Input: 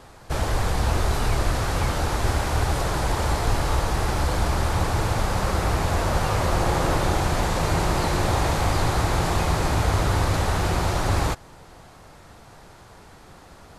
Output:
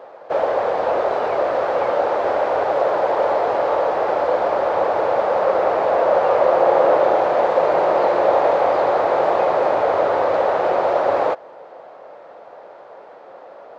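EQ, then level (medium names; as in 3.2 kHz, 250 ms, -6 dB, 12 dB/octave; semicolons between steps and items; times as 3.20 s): resonant high-pass 550 Hz, resonance Q 3.8; tape spacing loss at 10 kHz 40 dB; +7.0 dB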